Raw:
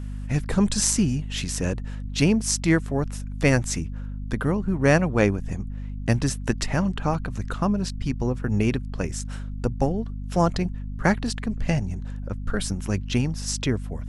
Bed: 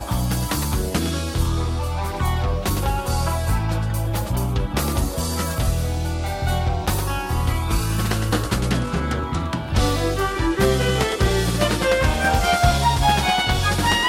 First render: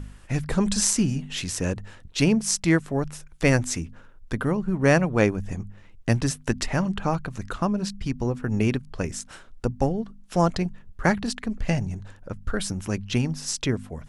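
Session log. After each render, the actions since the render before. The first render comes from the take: de-hum 50 Hz, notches 5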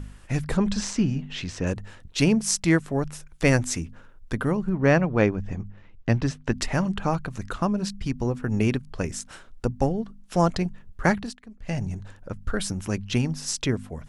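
0.57–1.67 s: distance through air 140 m; 4.69–6.53 s: distance through air 140 m; 11.13–11.85 s: dip -16 dB, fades 0.24 s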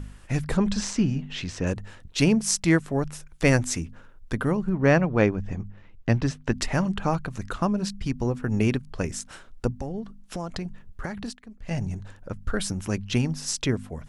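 9.76–11.71 s: compression 12:1, threshold -27 dBFS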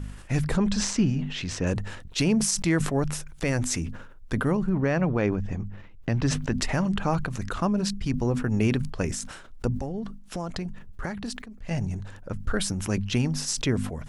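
peak limiter -13 dBFS, peak gain reduction 8 dB; decay stretcher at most 60 dB/s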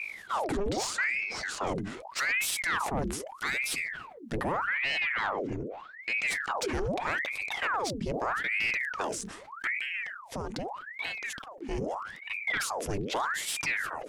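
saturation -22 dBFS, distortion -12 dB; ring modulator with a swept carrier 1.3 kHz, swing 85%, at 0.81 Hz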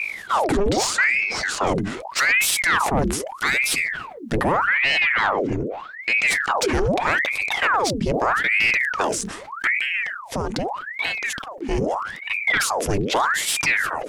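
trim +10.5 dB

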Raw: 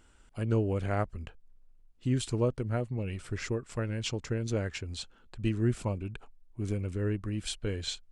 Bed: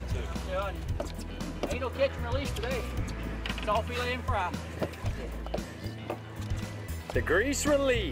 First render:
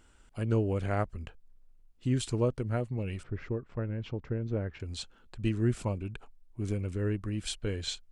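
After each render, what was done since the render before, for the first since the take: 3.23–4.80 s: tape spacing loss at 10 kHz 43 dB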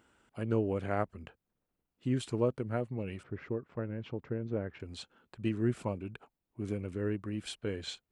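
Bessel high-pass 160 Hz, order 2; peaking EQ 6.8 kHz -8.5 dB 2 oct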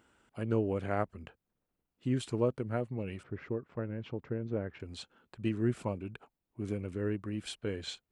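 no audible change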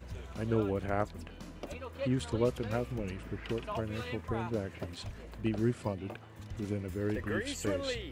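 add bed -10.5 dB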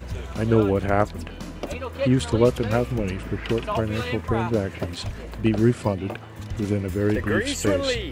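trim +11.5 dB

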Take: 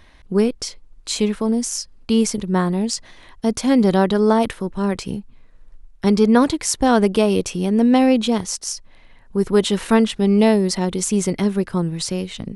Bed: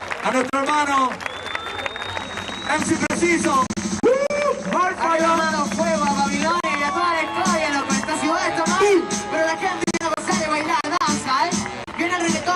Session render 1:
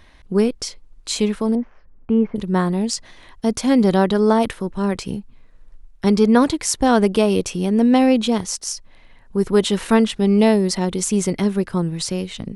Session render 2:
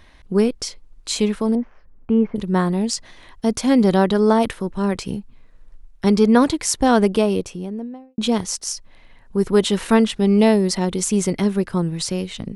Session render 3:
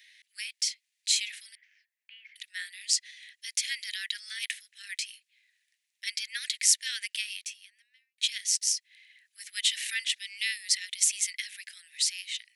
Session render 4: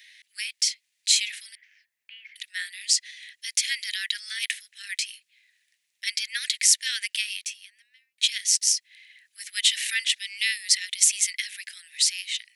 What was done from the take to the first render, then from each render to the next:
1.55–2.36 s: Bessel low-pass 1.3 kHz, order 6
6.95–8.18 s: studio fade out
steep high-pass 1.8 kHz 72 dB/octave
trim +5.5 dB; peak limiter -2 dBFS, peak gain reduction 3 dB

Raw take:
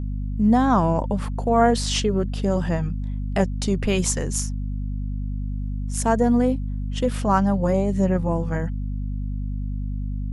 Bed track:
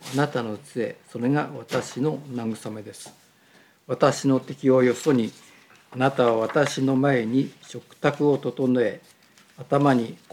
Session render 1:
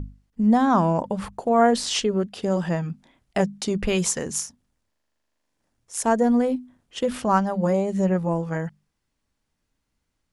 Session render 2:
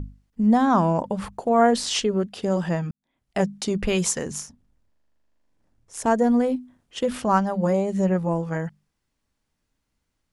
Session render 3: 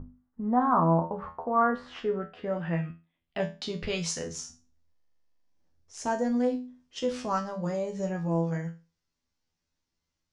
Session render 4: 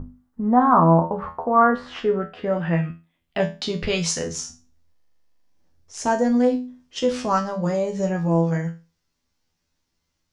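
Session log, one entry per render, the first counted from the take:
hum notches 50/100/150/200/250 Hz
2.91–3.43 s: fade in quadratic; 4.31–6.06 s: tilt EQ -2 dB/octave
feedback comb 83 Hz, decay 0.3 s, harmonics all, mix 90%; low-pass sweep 1.2 kHz -> 5.7 kHz, 1.60–4.31 s
trim +8 dB

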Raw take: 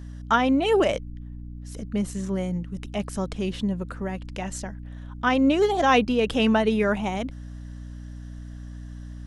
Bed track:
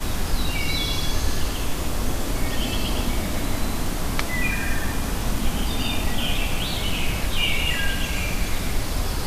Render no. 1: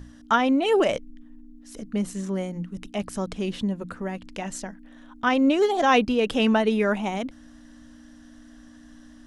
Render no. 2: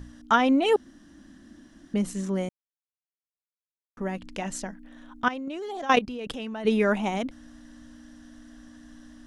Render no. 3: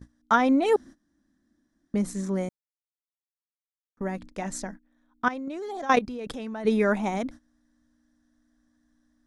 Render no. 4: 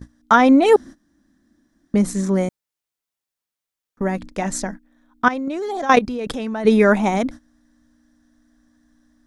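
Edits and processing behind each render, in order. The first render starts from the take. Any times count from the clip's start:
hum notches 60/120/180 Hz
0.76–1.94 s: room tone; 2.49–3.97 s: mute; 5.28–6.65 s: level held to a coarse grid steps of 17 dB
gate -40 dBFS, range -20 dB; peaking EQ 2.9 kHz -13 dB 0.26 oct
trim +9 dB; peak limiter -2 dBFS, peak gain reduction 2.5 dB

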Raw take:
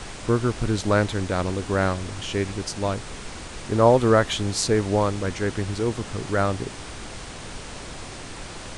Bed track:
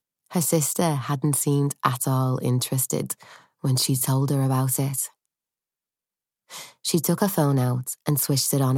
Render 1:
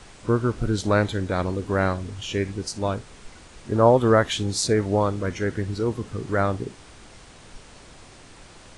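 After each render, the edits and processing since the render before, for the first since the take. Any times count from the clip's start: noise print and reduce 10 dB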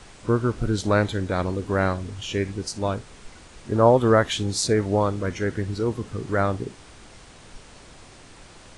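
no audible change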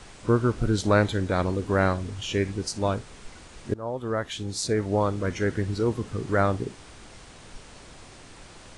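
3.74–5.42 s: fade in, from -22.5 dB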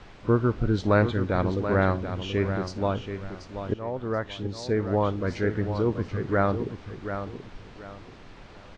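distance through air 200 m; feedback delay 732 ms, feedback 28%, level -9 dB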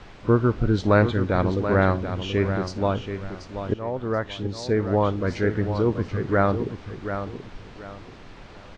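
trim +3 dB

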